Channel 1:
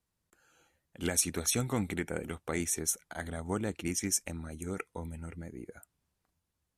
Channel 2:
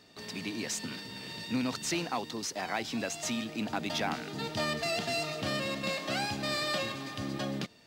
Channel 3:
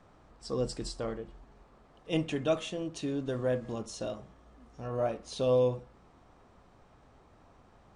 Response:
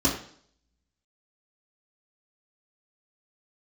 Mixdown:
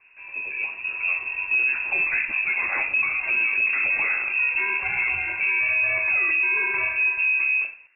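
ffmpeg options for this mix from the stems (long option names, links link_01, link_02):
-filter_complex "[0:a]volume=-10dB,afade=type=out:start_time=1.06:duration=0.22:silence=0.375837,asplit=3[link_01][link_02][link_03];[link_02]volume=-7dB[link_04];[1:a]lowshelf=frequency=320:gain=3,volume=-4.5dB,asplit=2[link_05][link_06];[link_06]volume=-12dB[link_07];[2:a]volume=-3.5dB[link_08];[link_03]apad=whole_len=350898[link_09];[link_08][link_09]sidechaincompress=threshold=-52dB:ratio=8:attack=16:release=261[link_10];[3:a]atrim=start_sample=2205[link_11];[link_04][link_07]amix=inputs=2:normalize=0[link_12];[link_12][link_11]afir=irnorm=-1:irlink=0[link_13];[link_01][link_05][link_10][link_13]amix=inputs=4:normalize=0,dynaudnorm=framelen=250:gausssize=9:maxgain=9.5dB,lowpass=frequency=2400:width_type=q:width=0.5098,lowpass=frequency=2400:width_type=q:width=0.6013,lowpass=frequency=2400:width_type=q:width=0.9,lowpass=frequency=2400:width_type=q:width=2.563,afreqshift=-2800,alimiter=limit=-15dB:level=0:latency=1:release=26"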